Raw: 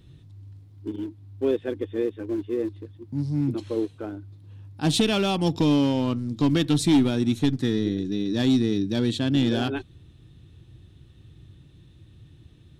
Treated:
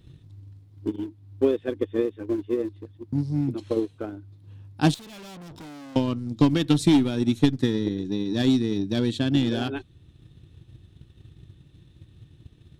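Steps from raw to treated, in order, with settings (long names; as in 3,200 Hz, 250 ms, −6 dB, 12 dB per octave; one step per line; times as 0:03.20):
0:04.94–0:05.96: tube saturation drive 39 dB, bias 0.75
transient designer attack +8 dB, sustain −2 dB
level −2 dB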